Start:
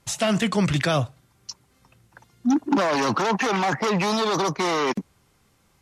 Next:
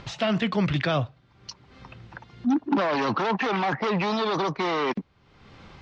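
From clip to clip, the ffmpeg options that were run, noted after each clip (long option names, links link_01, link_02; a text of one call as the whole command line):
ffmpeg -i in.wav -af "lowpass=frequency=4300:width=0.5412,lowpass=frequency=4300:width=1.3066,acompressor=mode=upward:threshold=-28dB:ratio=2.5,volume=-2.5dB" out.wav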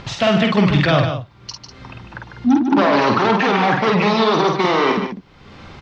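ffmpeg -i in.wav -filter_complex "[0:a]asplit=2[link_01][link_02];[link_02]adelay=49,volume=-4dB[link_03];[link_01][link_03]amix=inputs=2:normalize=0,aecho=1:1:148:0.398,volume=7.5dB" out.wav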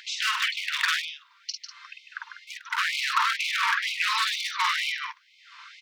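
ffmpeg -i in.wav -af "aeval=exprs='0.282*(abs(mod(val(0)/0.282+3,4)-2)-1)':channel_layout=same,afftfilt=real='re*gte(b*sr/1024,870*pow(2100/870,0.5+0.5*sin(2*PI*2.1*pts/sr)))':imag='im*gte(b*sr/1024,870*pow(2100/870,0.5+0.5*sin(2*PI*2.1*pts/sr)))':win_size=1024:overlap=0.75,volume=-2dB" out.wav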